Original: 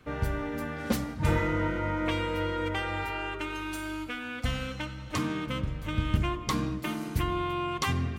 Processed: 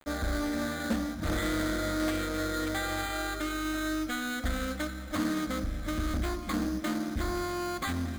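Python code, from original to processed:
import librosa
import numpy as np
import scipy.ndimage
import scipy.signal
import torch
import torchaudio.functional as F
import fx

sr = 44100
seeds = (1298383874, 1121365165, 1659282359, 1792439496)

p1 = fx.rider(x, sr, range_db=10, speed_s=0.5)
p2 = x + (p1 * 10.0 ** (-3.0 / 20.0))
p3 = 10.0 ** (-20.0 / 20.0) * np.tanh(p2 / 10.0 ** (-20.0 / 20.0))
p4 = fx.fixed_phaser(p3, sr, hz=640.0, stages=8)
p5 = fx.quant_dither(p4, sr, seeds[0], bits=8, dither='none')
p6 = np.repeat(scipy.signal.resample_poly(p5, 1, 8), 8)[:len(p5)]
y = fx.doppler_dist(p6, sr, depth_ms=0.27)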